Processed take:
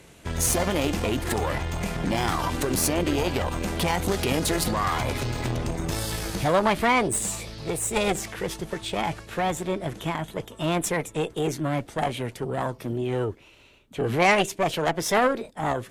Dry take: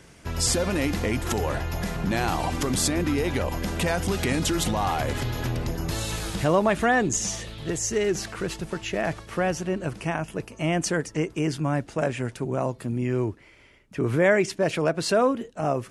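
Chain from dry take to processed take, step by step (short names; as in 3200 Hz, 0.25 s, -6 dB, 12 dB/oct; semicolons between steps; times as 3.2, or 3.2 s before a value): added harmonics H 2 -18 dB, 4 -15 dB, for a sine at -8.5 dBFS; formant shift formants +4 st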